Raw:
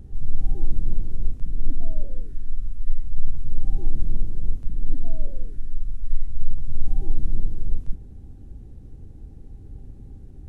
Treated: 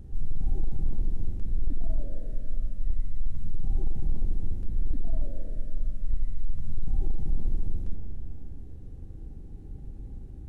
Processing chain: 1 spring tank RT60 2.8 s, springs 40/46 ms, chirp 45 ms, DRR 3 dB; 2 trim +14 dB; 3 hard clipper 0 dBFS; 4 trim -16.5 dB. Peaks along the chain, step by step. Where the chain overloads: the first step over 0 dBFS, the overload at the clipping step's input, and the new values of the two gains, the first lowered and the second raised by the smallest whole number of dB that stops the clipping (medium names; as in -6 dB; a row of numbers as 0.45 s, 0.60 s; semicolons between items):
-6.0 dBFS, +8.0 dBFS, 0.0 dBFS, -16.5 dBFS; step 2, 8.0 dB; step 2 +6 dB, step 4 -8.5 dB